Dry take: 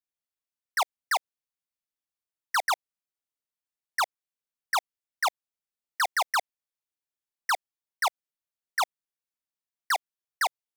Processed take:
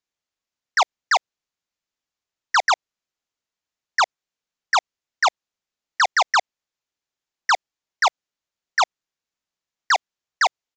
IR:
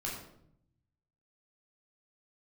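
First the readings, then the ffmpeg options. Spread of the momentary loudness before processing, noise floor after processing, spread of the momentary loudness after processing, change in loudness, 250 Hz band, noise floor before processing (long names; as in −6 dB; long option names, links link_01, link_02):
5 LU, below −85 dBFS, 5 LU, +8.0 dB, can't be measured, below −85 dBFS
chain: -af "aresample=16000,aresample=44100,volume=8dB"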